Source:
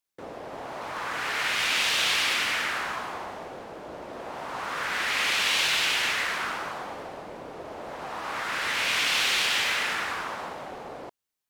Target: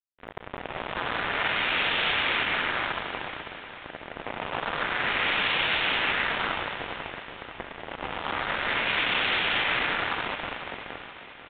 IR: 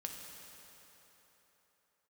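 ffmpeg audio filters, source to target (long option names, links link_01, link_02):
-filter_complex "[0:a]highshelf=frequency=2600:gain=-8,bandreject=frequency=1100:width=16,asplit=2[link_01][link_02];[link_02]alimiter=level_in=3.5dB:limit=-24dB:level=0:latency=1:release=415,volume=-3.5dB,volume=3dB[link_03];[link_01][link_03]amix=inputs=2:normalize=0,acrusher=bits=3:mix=0:aa=0.5,asplit=2[link_04][link_05];[link_05]aecho=0:1:491|982|1473|1964|2455|2946:0.251|0.136|0.0732|0.0396|0.0214|0.0115[link_06];[link_04][link_06]amix=inputs=2:normalize=0,aresample=8000,aresample=44100"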